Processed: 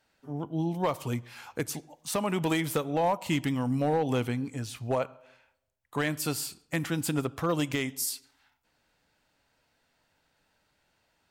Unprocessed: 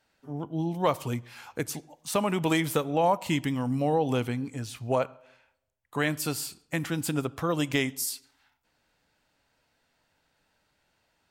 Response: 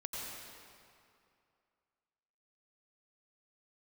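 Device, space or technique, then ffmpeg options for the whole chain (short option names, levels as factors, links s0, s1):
limiter into clipper: -af "alimiter=limit=0.158:level=0:latency=1:release=283,asoftclip=type=hard:threshold=0.106"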